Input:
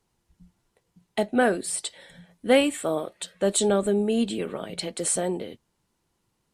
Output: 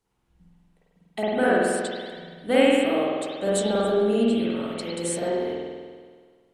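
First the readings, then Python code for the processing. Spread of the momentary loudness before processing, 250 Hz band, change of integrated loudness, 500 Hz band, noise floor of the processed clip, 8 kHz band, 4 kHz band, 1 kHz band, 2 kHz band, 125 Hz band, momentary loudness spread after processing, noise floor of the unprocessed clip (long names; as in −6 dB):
13 LU, +2.5 dB, +1.5 dB, +2.5 dB, −66 dBFS, −6.0 dB, 0.0 dB, +2.5 dB, +2.5 dB, +0.5 dB, 15 LU, −75 dBFS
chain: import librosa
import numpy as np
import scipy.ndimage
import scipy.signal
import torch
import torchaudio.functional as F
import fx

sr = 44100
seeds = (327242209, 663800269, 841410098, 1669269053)

y = fx.rev_spring(x, sr, rt60_s=1.7, pass_ms=(47,), chirp_ms=65, drr_db=-8.0)
y = y * 10.0 ** (-6.0 / 20.0)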